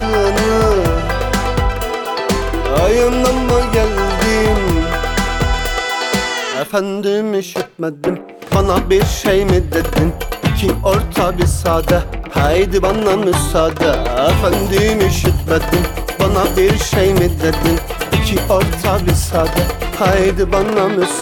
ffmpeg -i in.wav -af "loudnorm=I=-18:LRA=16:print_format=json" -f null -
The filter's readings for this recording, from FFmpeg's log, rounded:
"input_i" : "-15.1",
"input_tp" : "-3.4",
"input_lra" : "1.9",
"input_thresh" : "-25.1",